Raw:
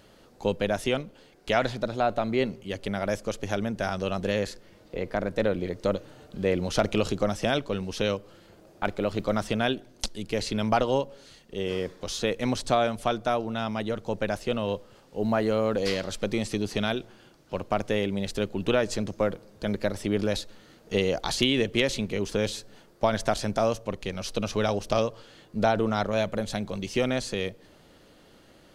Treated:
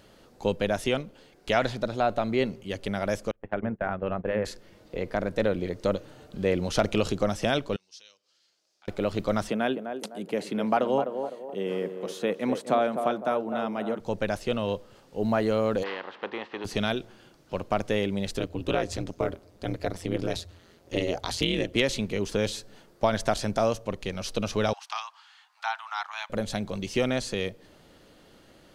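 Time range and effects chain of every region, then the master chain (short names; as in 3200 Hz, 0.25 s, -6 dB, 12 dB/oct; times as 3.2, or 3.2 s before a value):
3.31–4.45 LPF 2100 Hz 24 dB/oct + notches 50/100/150/200/250/300/350/400/450 Hz + gate -33 dBFS, range -26 dB
7.76–8.88 compressor 1.5:1, threshold -51 dBFS + band-pass 5300 Hz, Q 2.3
9.5–14 steep high-pass 150 Hz + bell 5200 Hz -12.5 dB 1.5 oct + narrowing echo 0.254 s, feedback 43%, band-pass 550 Hz, level -6 dB
15.82–16.64 spectral contrast lowered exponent 0.62 + speaker cabinet 450–2500 Hz, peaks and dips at 620 Hz -8 dB, 940 Hz +3 dB, 1400 Hz -4 dB, 2300 Hz -8 dB
18.39–21.76 notch 1600 Hz, Q 22 + ring modulator 87 Hz
24.73–26.3 steep high-pass 810 Hz 72 dB/oct + high shelf 6800 Hz -11.5 dB
whole clip: dry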